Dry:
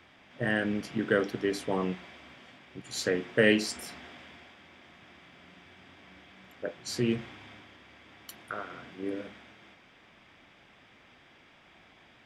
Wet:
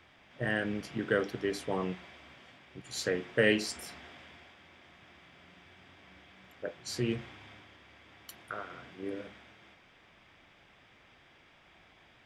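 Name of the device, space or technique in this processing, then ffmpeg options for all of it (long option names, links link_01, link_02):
low shelf boost with a cut just above: -af "lowshelf=frequency=77:gain=5.5,equalizer=frequency=240:width_type=o:width=0.71:gain=-4,volume=-2.5dB"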